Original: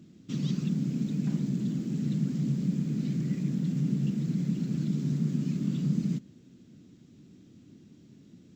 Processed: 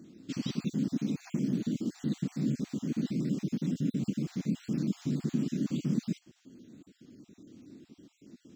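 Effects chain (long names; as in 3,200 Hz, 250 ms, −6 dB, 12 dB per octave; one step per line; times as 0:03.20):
time-frequency cells dropped at random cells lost 36%
low shelf with overshoot 210 Hz −6.5 dB, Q 1.5
level +3.5 dB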